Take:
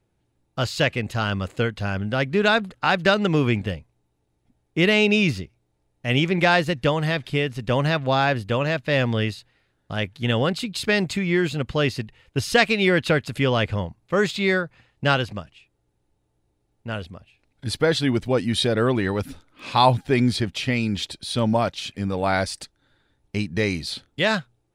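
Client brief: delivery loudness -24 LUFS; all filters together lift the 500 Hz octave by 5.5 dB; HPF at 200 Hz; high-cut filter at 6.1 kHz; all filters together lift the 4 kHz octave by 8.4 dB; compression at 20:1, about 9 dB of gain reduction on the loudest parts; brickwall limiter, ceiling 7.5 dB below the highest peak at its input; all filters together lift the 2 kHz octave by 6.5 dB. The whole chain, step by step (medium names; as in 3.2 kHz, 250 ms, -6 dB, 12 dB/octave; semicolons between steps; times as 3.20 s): high-pass 200 Hz; low-pass 6.1 kHz; peaking EQ 500 Hz +6.5 dB; peaking EQ 2 kHz +5.5 dB; peaking EQ 4 kHz +9 dB; compression 20:1, threshold -15 dBFS; trim -0.5 dB; peak limiter -12 dBFS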